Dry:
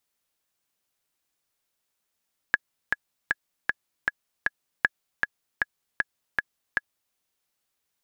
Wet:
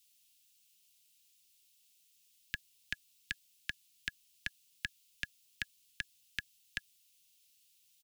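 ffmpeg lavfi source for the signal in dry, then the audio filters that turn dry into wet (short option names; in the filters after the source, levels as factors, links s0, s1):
-f lavfi -i "aevalsrc='pow(10,(-5.5-4*gte(mod(t,6*60/156),60/156))/20)*sin(2*PI*1680*mod(t,60/156))*exp(-6.91*mod(t,60/156)/0.03)':d=4.61:s=44100"
-filter_complex "[0:a]firequalizer=gain_entry='entry(180,0);entry(710,-29);entry(2700,11)':delay=0.05:min_phase=1,acrossover=split=110[s0][s1];[s1]alimiter=limit=0.141:level=0:latency=1:release=29[s2];[s0][s2]amix=inputs=2:normalize=0"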